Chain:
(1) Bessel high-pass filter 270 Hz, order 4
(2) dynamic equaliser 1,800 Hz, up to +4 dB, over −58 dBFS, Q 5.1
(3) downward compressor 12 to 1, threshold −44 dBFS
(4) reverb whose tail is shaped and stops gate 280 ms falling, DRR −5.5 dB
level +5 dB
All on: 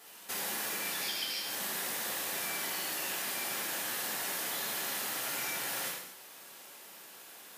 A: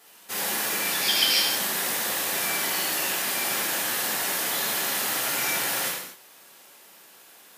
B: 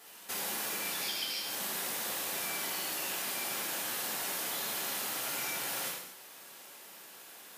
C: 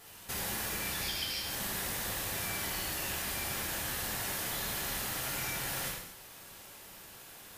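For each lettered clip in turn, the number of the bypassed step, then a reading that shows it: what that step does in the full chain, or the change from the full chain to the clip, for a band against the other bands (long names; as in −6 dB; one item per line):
3, average gain reduction 7.0 dB
2, 2 kHz band −1.5 dB
1, 125 Hz band +13.5 dB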